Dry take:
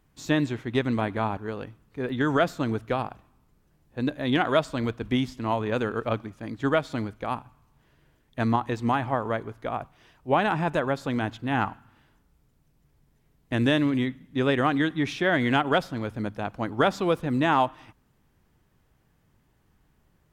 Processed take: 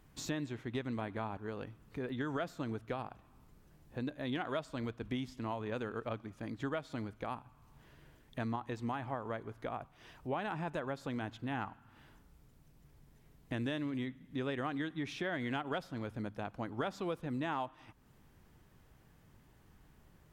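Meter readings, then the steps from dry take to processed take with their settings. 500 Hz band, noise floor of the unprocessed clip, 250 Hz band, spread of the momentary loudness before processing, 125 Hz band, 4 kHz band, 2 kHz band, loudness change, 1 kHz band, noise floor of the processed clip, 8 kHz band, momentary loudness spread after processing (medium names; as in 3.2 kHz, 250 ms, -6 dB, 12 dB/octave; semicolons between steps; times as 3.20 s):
-13.5 dB, -66 dBFS, -12.5 dB, 10 LU, -12.0 dB, -13.5 dB, -14.0 dB, -13.5 dB, -14.0 dB, -64 dBFS, no reading, 7 LU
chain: compression 2.5:1, threshold -46 dBFS, peak gain reduction 19 dB; trim +2.5 dB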